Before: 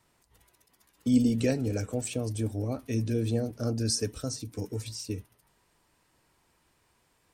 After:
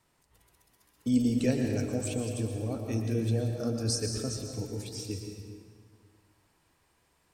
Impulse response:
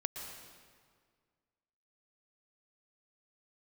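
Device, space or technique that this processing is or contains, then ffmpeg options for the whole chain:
stairwell: -filter_complex "[1:a]atrim=start_sample=2205[a];[0:a][a]afir=irnorm=-1:irlink=0,volume=-1.5dB"

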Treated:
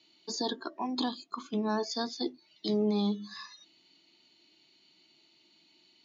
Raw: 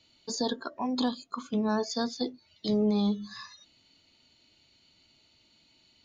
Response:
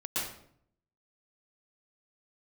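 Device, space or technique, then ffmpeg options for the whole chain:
television speaker: -af "highpass=f=170:w=0.5412,highpass=f=170:w=1.3066,equalizer=f=240:t=q:w=4:g=-6,equalizer=f=340:t=q:w=4:g=8,equalizer=f=520:t=q:w=4:g=-10,equalizer=f=1.4k:t=q:w=4:g=-4,lowpass=f=6.5k:w=0.5412,lowpass=f=6.5k:w=1.3066"

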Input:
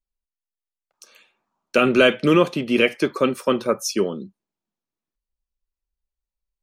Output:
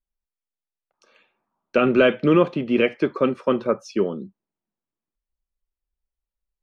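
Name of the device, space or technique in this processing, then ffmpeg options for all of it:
phone in a pocket: -af "lowpass=3.8k,highshelf=f=2.3k:g=-9"

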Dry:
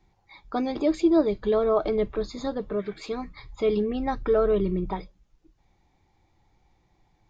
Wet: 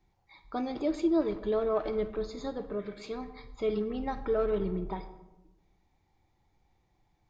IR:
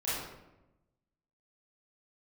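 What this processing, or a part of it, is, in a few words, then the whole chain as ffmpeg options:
saturated reverb return: -filter_complex "[0:a]asplit=2[a][b];[1:a]atrim=start_sample=2205[c];[b][c]afir=irnorm=-1:irlink=0,asoftclip=type=tanh:threshold=-15dB,volume=-14dB[d];[a][d]amix=inputs=2:normalize=0,volume=-7.5dB"

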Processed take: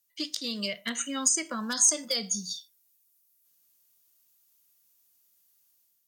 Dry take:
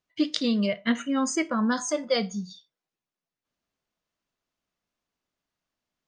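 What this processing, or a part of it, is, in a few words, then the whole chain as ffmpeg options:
FM broadcast chain: -filter_complex "[0:a]highpass=49,dynaudnorm=f=360:g=3:m=7dB,acrossover=split=200|440|1500[a][b][c][d];[a]acompressor=threshold=-36dB:ratio=4[e];[b]acompressor=threshold=-27dB:ratio=4[f];[c]acompressor=threshold=-29dB:ratio=4[g];[d]acompressor=threshold=-29dB:ratio=4[h];[e][f][g][h]amix=inputs=4:normalize=0,aemphasis=mode=production:type=75fm,alimiter=limit=-11dB:level=0:latency=1:release=238,asoftclip=type=hard:threshold=-14dB,lowpass=f=15k:w=0.5412,lowpass=f=15k:w=1.3066,aemphasis=mode=production:type=75fm,volume=-9dB"

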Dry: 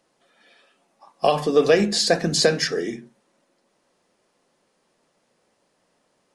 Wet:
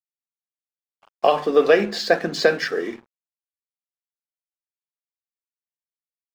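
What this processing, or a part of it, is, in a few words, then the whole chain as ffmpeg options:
pocket radio on a weak battery: -af "highpass=280,lowpass=3.3k,aeval=exprs='sgn(val(0))*max(abs(val(0))-0.00531,0)':c=same,equalizer=f=1.4k:t=o:w=0.52:g=4,volume=2dB"

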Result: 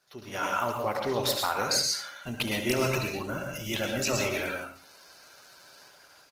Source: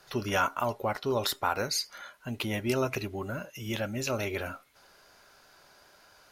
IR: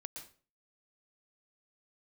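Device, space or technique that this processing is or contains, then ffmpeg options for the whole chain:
far-field microphone of a smart speaker: -filter_complex "[0:a]highpass=f=40:p=1,equalizer=f=7.8k:t=o:w=3:g=5,aecho=1:1:71:0.299[a];[1:a]atrim=start_sample=2205[b];[a][b]afir=irnorm=-1:irlink=0,highpass=f=80:p=1,dynaudnorm=f=310:g=3:m=14dB,volume=-8dB" -ar 48000 -c:a libopus -b:a 16k

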